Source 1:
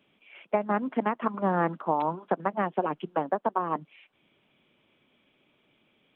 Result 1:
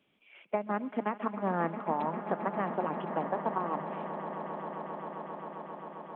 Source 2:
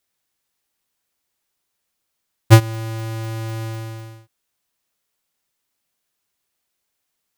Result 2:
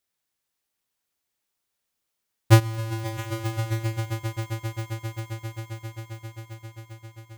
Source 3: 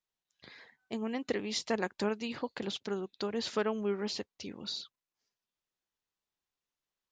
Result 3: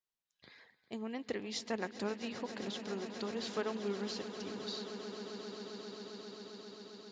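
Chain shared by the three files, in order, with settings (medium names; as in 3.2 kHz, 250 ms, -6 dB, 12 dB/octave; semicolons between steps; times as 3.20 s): echo with a slow build-up 133 ms, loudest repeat 8, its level -15 dB; trim -5.5 dB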